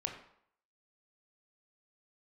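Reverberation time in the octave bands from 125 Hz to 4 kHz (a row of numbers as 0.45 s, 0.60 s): 0.50 s, 0.60 s, 0.65 s, 0.70 s, 0.60 s, 0.50 s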